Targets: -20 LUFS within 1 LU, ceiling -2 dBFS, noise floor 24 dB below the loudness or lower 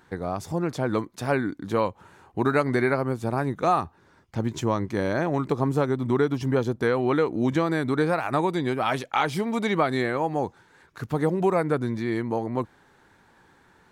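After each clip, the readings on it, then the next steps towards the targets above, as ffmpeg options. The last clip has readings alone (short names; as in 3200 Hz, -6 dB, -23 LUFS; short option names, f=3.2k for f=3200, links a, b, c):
loudness -25.5 LUFS; peak -10.5 dBFS; loudness target -20.0 LUFS
-> -af "volume=5.5dB"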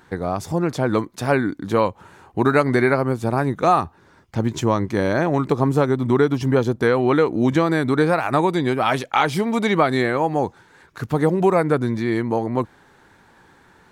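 loudness -20.0 LUFS; peak -5.0 dBFS; noise floor -53 dBFS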